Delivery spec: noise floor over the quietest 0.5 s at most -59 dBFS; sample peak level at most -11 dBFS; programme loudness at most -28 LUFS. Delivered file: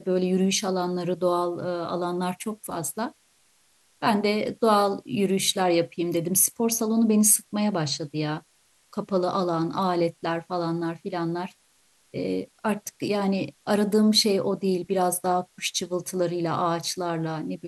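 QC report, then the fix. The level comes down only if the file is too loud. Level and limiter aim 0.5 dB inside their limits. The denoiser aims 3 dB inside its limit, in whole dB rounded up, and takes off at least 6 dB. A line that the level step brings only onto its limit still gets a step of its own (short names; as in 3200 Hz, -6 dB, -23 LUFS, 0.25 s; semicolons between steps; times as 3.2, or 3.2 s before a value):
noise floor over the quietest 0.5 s -63 dBFS: OK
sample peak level -5.0 dBFS: fail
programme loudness -25.0 LUFS: fail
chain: gain -3.5 dB; limiter -11.5 dBFS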